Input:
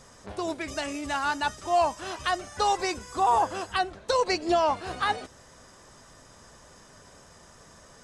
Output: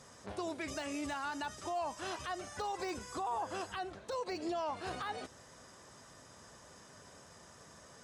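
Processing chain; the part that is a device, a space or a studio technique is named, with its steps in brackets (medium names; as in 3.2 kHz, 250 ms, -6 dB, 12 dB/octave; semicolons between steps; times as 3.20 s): podcast mastering chain (high-pass 76 Hz; de-esser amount 90%; compression, threshold -26 dBFS, peak gain reduction 7 dB; peak limiter -26 dBFS, peak gain reduction 8.5 dB; trim -3.5 dB; MP3 112 kbps 48 kHz)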